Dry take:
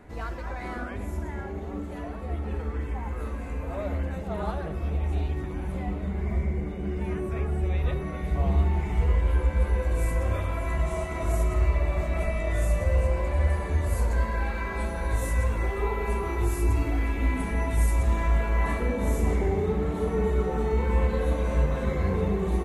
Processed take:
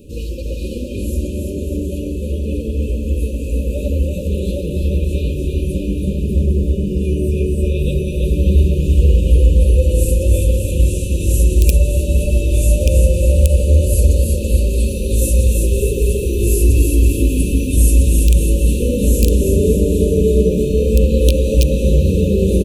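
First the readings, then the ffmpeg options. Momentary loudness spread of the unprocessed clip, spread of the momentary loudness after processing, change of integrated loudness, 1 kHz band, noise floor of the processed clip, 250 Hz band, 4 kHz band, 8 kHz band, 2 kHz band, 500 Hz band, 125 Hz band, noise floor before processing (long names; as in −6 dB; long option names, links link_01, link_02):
9 LU, 8 LU, +12.0 dB, below −30 dB, −23 dBFS, +12.5 dB, +15.5 dB, +19.0 dB, +0.5 dB, +11.5 dB, +12.0 dB, −35 dBFS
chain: -af "highshelf=frequency=8200:gain=11.5,aecho=1:1:330|594|805.2|974.2|1109:0.631|0.398|0.251|0.158|0.1,aeval=exprs='(mod(3.55*val(0)+1,2)-1)/3.55':channel_layout=same,afftfilt=real='re*(1-between(b*sr/4096,600,2400))':imag='im*(1-between(b*sr/4096,600,2400))':win_size=4096:overlap=0.75,alimiter=level_in=11.5dB:limit=-1dB:release=50:level=0:latency=1,volume=-1dB"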